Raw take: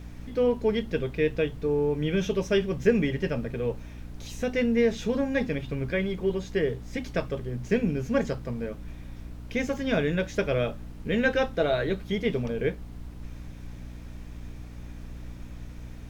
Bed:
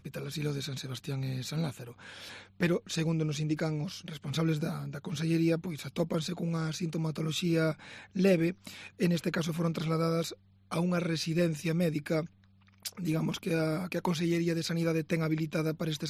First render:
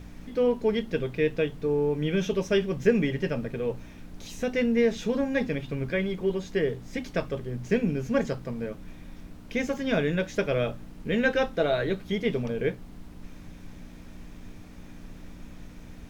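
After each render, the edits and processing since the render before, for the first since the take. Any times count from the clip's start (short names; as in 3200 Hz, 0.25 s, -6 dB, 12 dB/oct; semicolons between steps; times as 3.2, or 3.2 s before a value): de-hum 60 Hz, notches 2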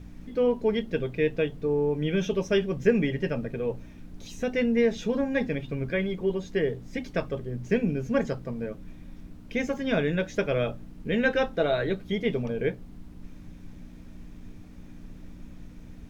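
denoiser 6 dB, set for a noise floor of -46 dBFS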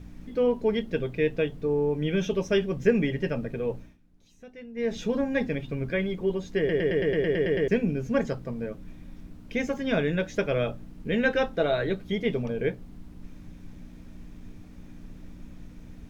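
3.76–4.96 dip -18.5 dB, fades 0.22 s; 6.58 stutter in place 0.11 s, 10 plays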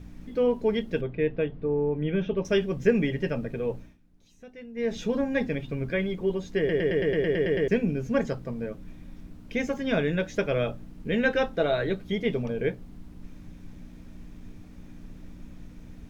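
1.01–2.45 air absorption 360 m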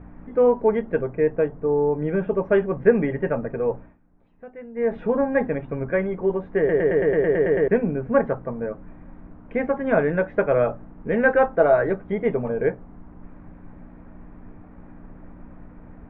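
LPF 1900 Hz 24 dB/oct; bell 870 Hz +11 dB 2.1 oct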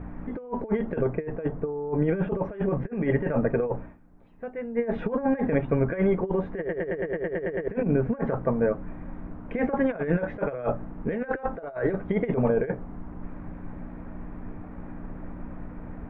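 negative-ratio compressor -25 dBFS, ratio -0.5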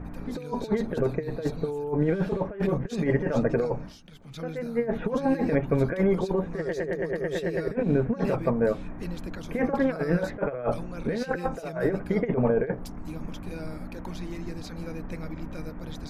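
add bed -9 dB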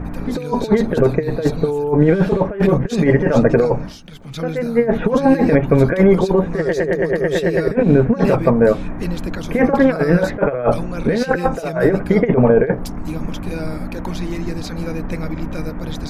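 gain +11.5 dB; limiter -2 dBFS, peak gain reduction 2.5 dB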